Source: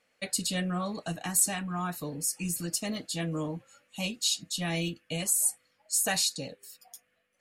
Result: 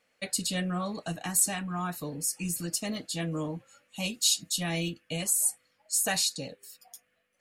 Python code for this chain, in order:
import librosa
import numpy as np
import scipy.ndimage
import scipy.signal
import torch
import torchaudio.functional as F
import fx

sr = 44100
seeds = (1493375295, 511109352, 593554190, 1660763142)

y = fx.high_shelf(x, sr, hz=7300.0, db=9.5, at=(4.05, 4.63))